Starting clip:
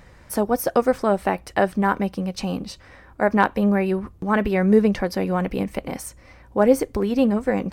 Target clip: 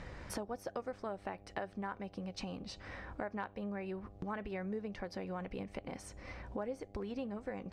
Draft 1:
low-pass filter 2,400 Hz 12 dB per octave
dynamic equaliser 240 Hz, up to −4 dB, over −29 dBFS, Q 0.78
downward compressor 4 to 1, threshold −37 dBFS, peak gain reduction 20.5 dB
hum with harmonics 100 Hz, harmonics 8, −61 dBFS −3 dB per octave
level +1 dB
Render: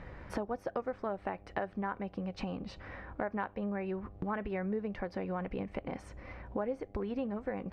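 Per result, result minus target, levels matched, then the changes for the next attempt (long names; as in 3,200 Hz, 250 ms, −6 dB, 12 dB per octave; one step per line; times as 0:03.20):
8,000 Hz band −14.5 dB; downward compressor: peak gain reduction −5 dB
change: low-pass filter 5,700 Hz 12 dB per octave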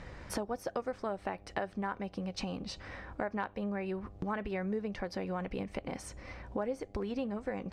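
downward compressor: peak gain reduction −5 dB
change: downward compressor 4 to 1, threshold −43.5 dBFS, peak gain reduction 25 dB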